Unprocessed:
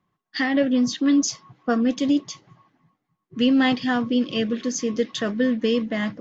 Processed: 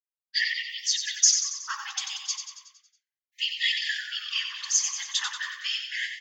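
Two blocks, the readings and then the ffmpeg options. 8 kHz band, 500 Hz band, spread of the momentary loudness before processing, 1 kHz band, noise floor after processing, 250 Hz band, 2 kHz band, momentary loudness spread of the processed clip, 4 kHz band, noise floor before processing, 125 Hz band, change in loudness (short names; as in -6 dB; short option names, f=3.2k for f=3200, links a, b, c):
n/a, under -40 dB, 8 LU, -11.0 dB, under -85 dBFS, under -40 dB, 0.0 dB, 11 LU, +5.0 dB, -79 dBFS, under -40 dB, -4.0 dB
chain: -filter_complex "[0:a]agate=range=-33dB:threshold=-49dB:ratio=3:detection=peak,crystalizer=i=4:c=0,afftfilt=real='hypot(re,im)*cos(2*PI*random(0))':imag='hypot(re,im)*sin(2*PI*random(1))':win_size=512:overlap=0.75,asplit=2[a][b];[b]aecho=0:1:92|184|276|368|460|552|644:0.447|0.246|0.135|0.0743|0.0409|0.0225|0.0124[c];[a][c]amix=inputs=2:normalize=0,afftfilt=real='re*gte(b*sr/1024,740*pow(1800/740,0.5+0.5*sin(2*PI*0.35*pts/sr)))':imag='im*gte(b*sr/1024,740*pow(1800/740,0.5+0.5*sin(2*PI*0.35*pts/sr)))':win_size=1024:overlap=0.75,volume=2dB"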